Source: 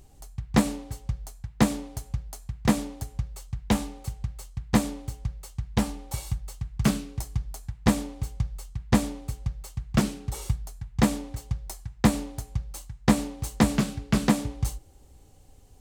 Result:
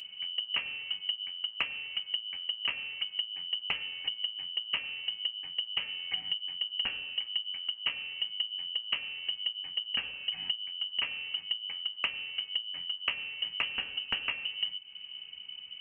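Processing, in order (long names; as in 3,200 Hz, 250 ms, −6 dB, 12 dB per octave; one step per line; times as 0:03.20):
voice inversion scrambler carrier 3,000 Hz
notch comb filter 350 Hz
downward compressor 6 to 1, threshold −37 dBFS, peak gain reduction 19.5 dB
level +6 dB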